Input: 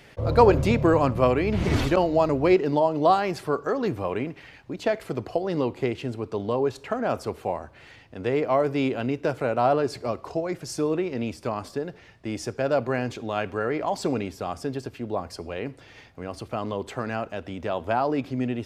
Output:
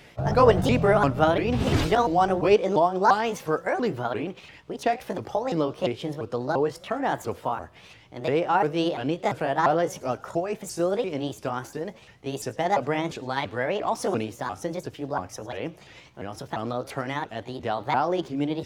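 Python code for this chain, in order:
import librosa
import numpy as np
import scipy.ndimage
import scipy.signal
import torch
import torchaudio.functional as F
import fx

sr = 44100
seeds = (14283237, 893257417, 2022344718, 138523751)

y = fx.pitch_ramps(x, sr, semitones=6.0, every_ms=345)
y = fx.echo_wet_highpass(y, sr, ms=106, feedback_pct=62, hz=3900.0, wet_db=-20.0)
y = y * librosa.db_to_amplitude(1.0)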